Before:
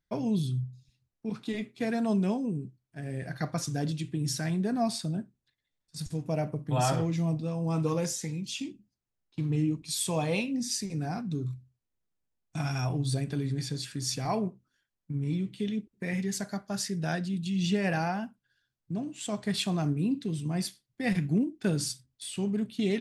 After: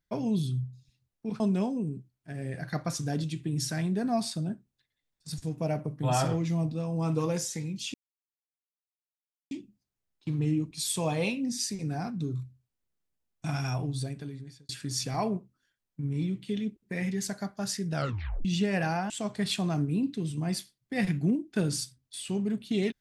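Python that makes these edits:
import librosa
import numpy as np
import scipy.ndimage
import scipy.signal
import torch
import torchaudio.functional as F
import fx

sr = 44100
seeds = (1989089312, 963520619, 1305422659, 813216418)

y = fx.edit(x, sr, fx.cut(start_s=1.4, length_s=0.68),
    fx.insert_silence(at_s=8.62, length_s=1.57),
    fx.fade_out_span(start_s=12.74, length_s=1.06),
    fx.tape_stop(start_s=17.06, length_s=0.5),
    fx.cut(start_s=18.21, length_s=0.97), tone=tone)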